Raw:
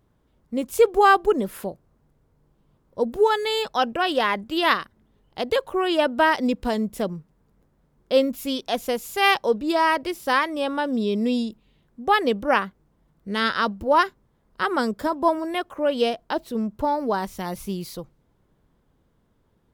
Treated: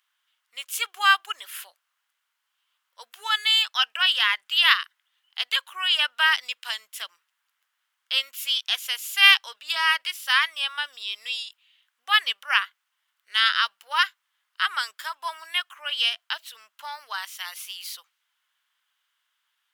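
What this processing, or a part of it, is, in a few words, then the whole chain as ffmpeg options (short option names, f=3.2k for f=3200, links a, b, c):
headphones lying on a table: -af "highpass=f=1.4k:w=0.5412,highpass=f=1.4k:w=1.3066,equalizer=f=3k:t=o:w=0.41:g=8,volume=3.5dB"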